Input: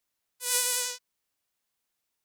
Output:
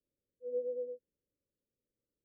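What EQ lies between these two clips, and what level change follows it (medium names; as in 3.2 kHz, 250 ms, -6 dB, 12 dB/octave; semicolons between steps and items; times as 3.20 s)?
Chebyshev low-pass 580 Hz, order 8; dynamic bell 240 Hz, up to +6 dB, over -58 dBFS, Q 0.8; +5.0 dB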